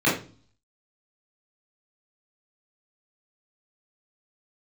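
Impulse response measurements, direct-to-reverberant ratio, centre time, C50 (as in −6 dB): −9.5 dB, 37 ms, 5.5 dB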